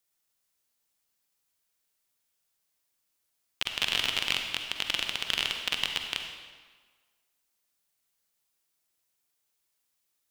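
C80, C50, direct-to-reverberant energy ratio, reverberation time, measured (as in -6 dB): 6.0 dB, 4.0 dB, 3.5 dB, 1.5 s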